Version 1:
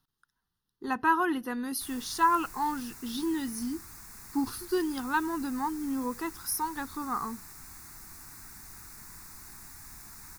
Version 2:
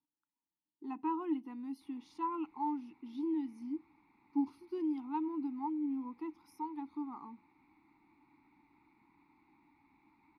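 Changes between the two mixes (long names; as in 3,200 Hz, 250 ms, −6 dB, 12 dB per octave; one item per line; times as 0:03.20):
background: add Butterworth low-pass 4,100 Hz 48 dB per octave
master: add formant filter u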